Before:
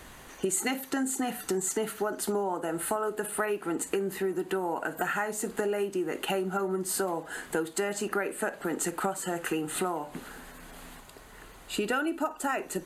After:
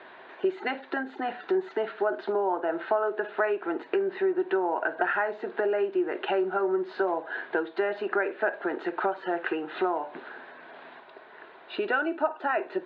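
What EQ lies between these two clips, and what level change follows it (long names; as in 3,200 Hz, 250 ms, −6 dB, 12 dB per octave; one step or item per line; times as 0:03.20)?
high-frequency loss of the air 290 metres
loudspeaker in its box 350–4,100 Hz, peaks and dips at 370 Hz +9 dB, 650 Hz +9 dB, 950 Hz +6 dB, 1,600 Hz +9 dB, 2,400 Hz +4 dB, 3,800 Hz +8 dB
−1.0 dB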